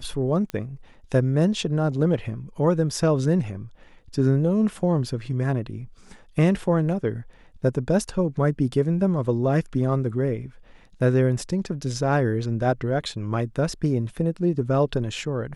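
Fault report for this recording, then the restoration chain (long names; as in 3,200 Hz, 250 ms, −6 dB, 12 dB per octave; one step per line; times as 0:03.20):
0:00.50: click −17 dBFS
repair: click removal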